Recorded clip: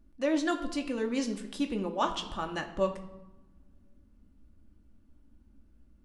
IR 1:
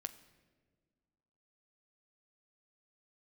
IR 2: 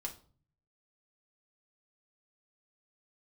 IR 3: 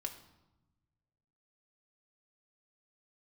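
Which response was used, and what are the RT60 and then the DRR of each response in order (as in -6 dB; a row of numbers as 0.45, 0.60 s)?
3; not exponential, 0.45 s, 0.95 s; 9.5, -0.5, 3.0 dB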